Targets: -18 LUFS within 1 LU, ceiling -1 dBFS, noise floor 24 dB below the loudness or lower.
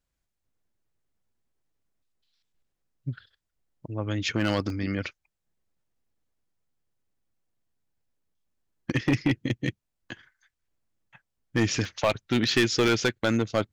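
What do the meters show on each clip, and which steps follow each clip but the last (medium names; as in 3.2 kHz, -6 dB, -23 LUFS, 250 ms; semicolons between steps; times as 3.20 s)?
clipped samples 0.4%; clipping level -16.0 dBFS; dropouts 3; longest dropout 1.7 ms; loudness -26.5 LUFS; peak level -16.0 dBFS; loudness target -18.0 LUFS
-> clip repair -16 dBFS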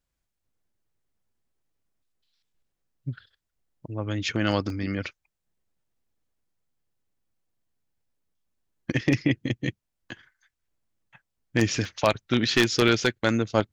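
clipped samples 0.0%; dropouts 3; longest dropout 1.7 ms
-> interpolate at 4.70/11.85/12.88 s, 1.7 ms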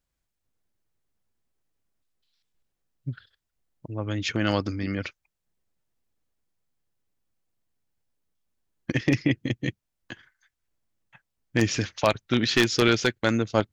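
dropouts 0; loudness -25.5 LUFS; peak level -7.0 dBFS; loudness target -18.0 LUFS
-> trim +7.5 dB; peak limiter -1 dBFS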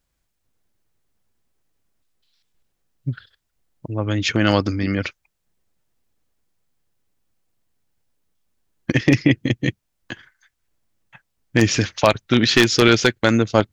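loudness -18.5 LUFS; peak level -1.0 dBFS; noise floor -74 dBFS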